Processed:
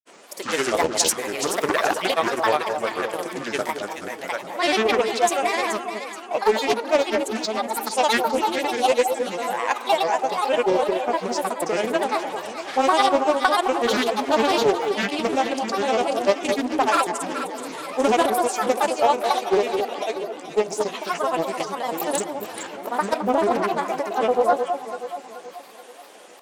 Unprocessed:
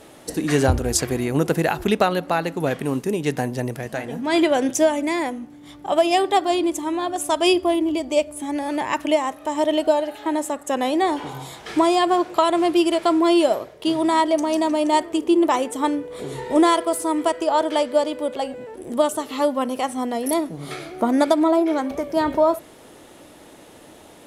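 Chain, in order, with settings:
high-pass filter 640 Hz 12 dB per octave
hard clipping −11.5 dBFS, distortion −27 dB
wrong playback speed 48 kHz file played as 44.1 kHz
granular cloud, pitch spread up and down by 7 semitones
delay that swaps between a low-pass and a high-pass 214 ms, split 1,000 Hz, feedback 66%, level −5.5 dB
highs frequency-modulated by the lows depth 0.3 ms
level +3 dB

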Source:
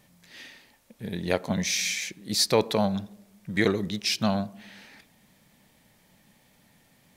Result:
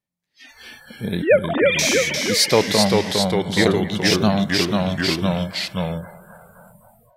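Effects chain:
0:01.22–0:01.79: three sine waves on the formant tracks
delay with pitch and tempo change per echo 244 ms, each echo −1 semitone, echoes 3
automatic gain control gain up to 9.5 dB
delay with a band-pass on its return 261 ms, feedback 71%, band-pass 1,200 Hz, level −16 dB
noise reduction from a noise print of the clip's start 28 dB

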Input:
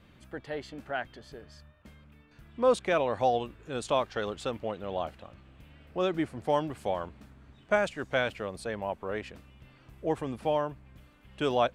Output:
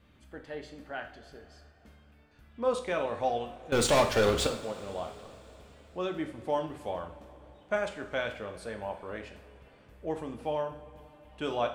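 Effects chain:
0:03.72–0:04.47: leveller curve on the samples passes 5
coupled-rooms reverb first 0.48 s, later 4.3 s, from −19 dB, DRR 4 dB
level −5.5 dB

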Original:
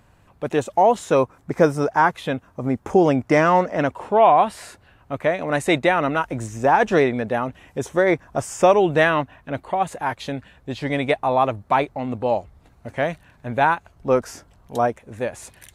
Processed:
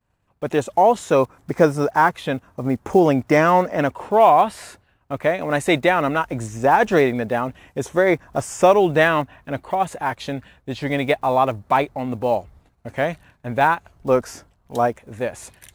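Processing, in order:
one scale factor per block 7 bits
downward expander −44 dBFS
level +1 dB

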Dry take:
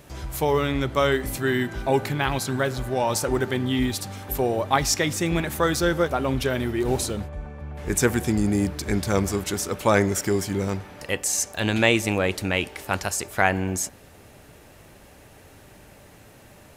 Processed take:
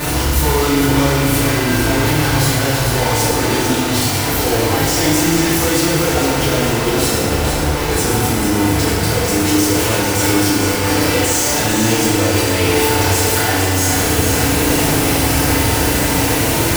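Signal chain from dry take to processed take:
sign of each sample alone
on a send: echo with a time of its own for lows and highs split 430 Hz, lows 87 ms, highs 450 ms, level −6 dB
on the sum: feedback delay network reverb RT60 1.4 s, low-frequency decay 1.25×, high-frequency decay 0.9×, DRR −8.5 dB
level −1 dB

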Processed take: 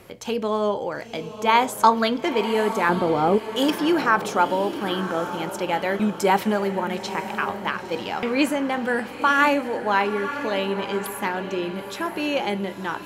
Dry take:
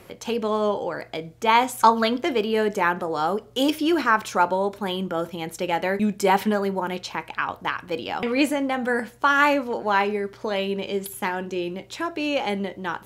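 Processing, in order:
0:02.89–0:03.38: tilt shelving filter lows +9.5 dB, about 1,100 Hz
on a send: feedback delay with all-pass diffusion 950 ms, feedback 43%, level −10.5 dB

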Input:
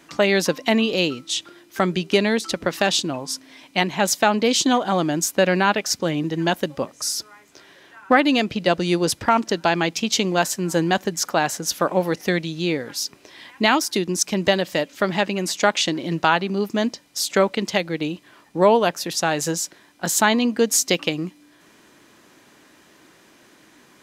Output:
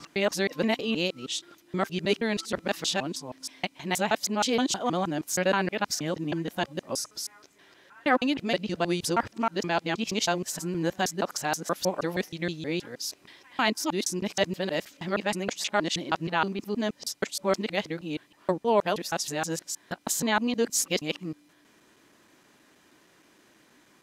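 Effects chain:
reversed piece by piece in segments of 158 ms
level −7.5 dB

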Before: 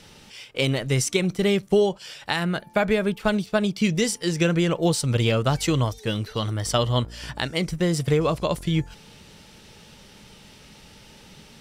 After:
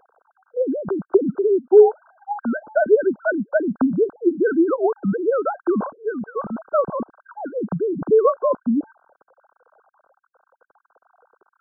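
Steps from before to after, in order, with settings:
three sine waves on the formant tracks
linear-phase brick-wall low-pass 1,600 Hz
level +3.5 dB

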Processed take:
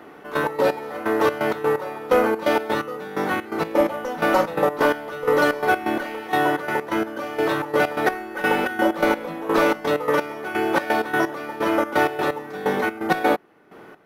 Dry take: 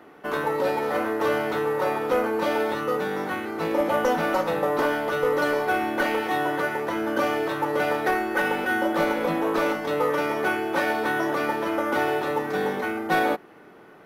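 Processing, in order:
gate pattern "xx.x.x..." 128 BPM −12 dB
level +5.5 dB

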